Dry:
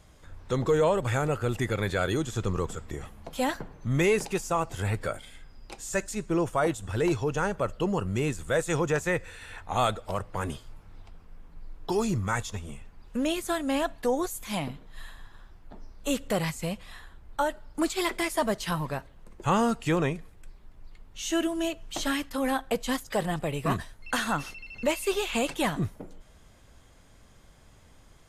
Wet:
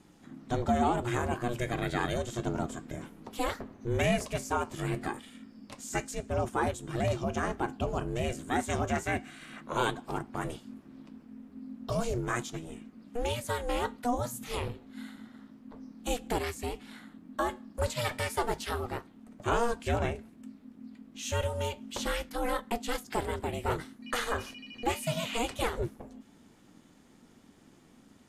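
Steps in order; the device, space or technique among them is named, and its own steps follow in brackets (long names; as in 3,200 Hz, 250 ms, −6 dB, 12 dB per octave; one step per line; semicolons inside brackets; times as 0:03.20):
alien voice (ring modulation 240 Hz; flanger 0.31 Hz, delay 5.3 ms, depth 7.9 ms, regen −73%)
0:14.33–0:14.73: parametric band 130 Hz +12 dB 0.77 octaves
level +3.5 dB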